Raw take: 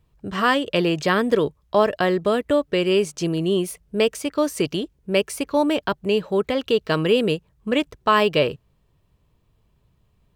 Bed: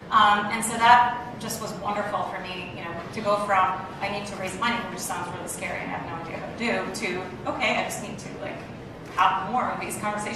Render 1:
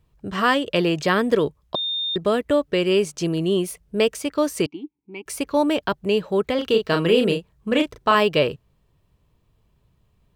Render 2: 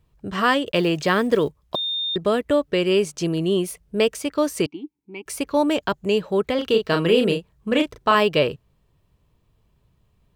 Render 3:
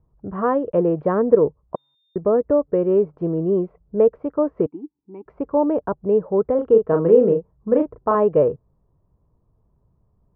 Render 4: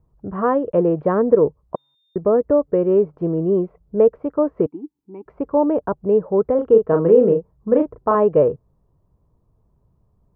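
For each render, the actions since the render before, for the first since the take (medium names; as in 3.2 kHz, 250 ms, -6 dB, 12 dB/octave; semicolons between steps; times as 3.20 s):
1.75–2.16 s: bleep 3.64 kHz -22.5 dBFS; 4.66–5.26 s: vowel filter u; 6.55–8.15 s: doubling 36 ms -5.5 dB
0.67–1.96 s: block-companded coder 7-bit; 5.71–6.18 s: peaking EQ 6.9 kHz +9.5 dB 0.26 oct
low-pass 1.1 kHz 24 dB/octave; dynamic bell 480 Hz, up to +7 dB, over -35 dBFS, Q 3.9
trim +1.5 dB; peak limiter -3 dBFS, peak gain reduction 2 dB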